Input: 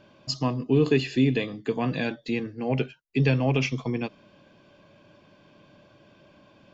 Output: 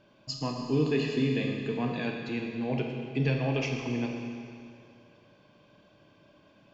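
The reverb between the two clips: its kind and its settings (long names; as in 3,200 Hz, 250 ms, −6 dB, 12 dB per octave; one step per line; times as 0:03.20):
four-comb reverb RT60 2.4 s, combs from 26 ms, DRR 1.5 dB
level −6.5 dB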